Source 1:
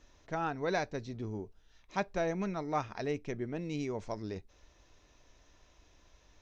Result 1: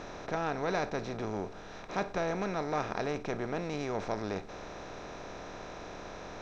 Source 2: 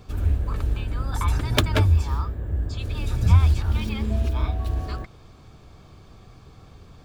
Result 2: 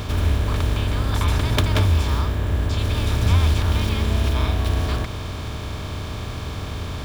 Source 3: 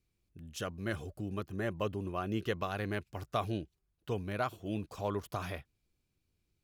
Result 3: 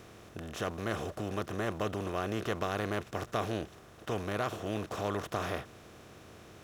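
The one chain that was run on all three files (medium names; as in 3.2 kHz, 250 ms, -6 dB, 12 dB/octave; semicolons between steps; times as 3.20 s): spectral levelling over time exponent 0.4; trim -3.5 dB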